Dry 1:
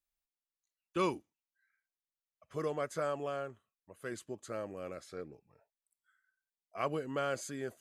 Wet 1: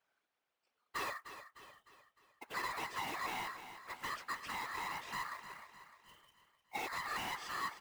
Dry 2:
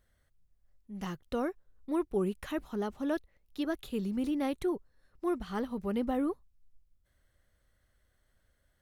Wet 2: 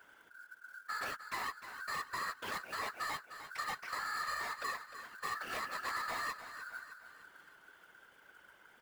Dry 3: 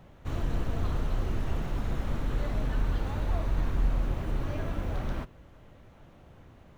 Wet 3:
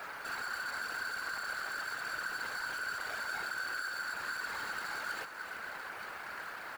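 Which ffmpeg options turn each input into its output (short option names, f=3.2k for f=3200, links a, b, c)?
-filter_complex "[0:a]lowshelf=f=300:g=-8,bandreject=f=570:w=17,acompressor=threshold=-49dB:ratio=4,aeval=exprs='val(0)*sin(2*PI*1500*n/s)':c=same,adynamicsmooth=sensitivity=6:basefreq=1.5k,acrusher=bits=4:mode=log:mix=0:aa=0.000001,asplit=2[a][b];[b]highpass=f=720:p=1,volume=22dB,asoftclip=type=tanh:threshold=-42.5dB[c];[a][c]amix=inputs=2:normalize=0,lowpass=f=1.8k:p=1,volume=-6dB,crystalizer=i=6:c=0,afftfilt=real='hypot(re,im)*cos(2*PI*random(0))':imag='hypot(re,im)*sin(2*PI*random(1))':win_size=512:overlap=0.75,aecho=1:1:304|608|912|1216|1520:0.266|0.128|0.0613|0.0294|0.0141,volume=13.5dB"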